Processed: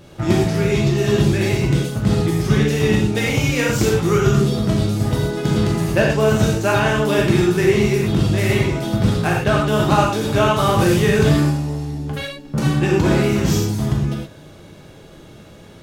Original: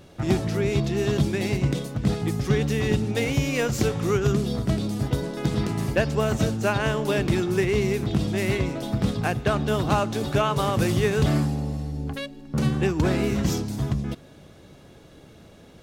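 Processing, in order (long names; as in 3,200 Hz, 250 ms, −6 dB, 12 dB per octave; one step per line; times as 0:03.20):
reverb whose tail is shaped and stops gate 140 ms flat, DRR −2.5 dB
level +3 dB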